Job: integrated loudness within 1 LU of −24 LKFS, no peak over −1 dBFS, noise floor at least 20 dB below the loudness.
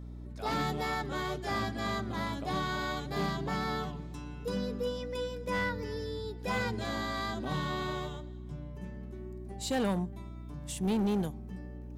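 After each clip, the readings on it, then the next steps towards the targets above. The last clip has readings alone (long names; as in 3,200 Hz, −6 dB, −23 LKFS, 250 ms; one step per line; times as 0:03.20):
share of clipped samples 1.1%; peaks flattened at −25.5 dBFS; mains hum 60 Hz; hum harmonics up to 300 Hz; level of the hum −41 dBFS; integrated loudness −35.0 LKFS; sample peak −25.5 dBFS; target loudness −24.0 LKFS
→ clipped peaks rebuilt −25.5 dBFS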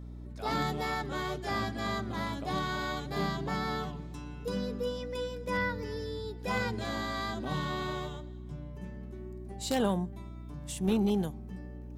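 share of clipped samples 0.0%; mains hum 60 Hz; hum harmonics up to 300 Hz; level of the hum −41 dBFS
→ hum removal 60 Hz, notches 5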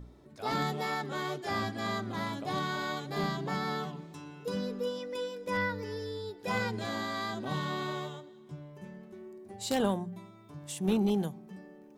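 mains hum none found; integrated loudness −34.0 LKFS; sample peak −15.5 dBFS; target loudness −24.0 LKFS
→ level +10 dB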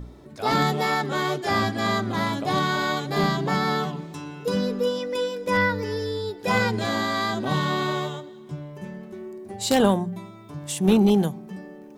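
integrated loudness −24.0 LKFS; sample peak −5.5 dBFS; background noise floor −44 dBFS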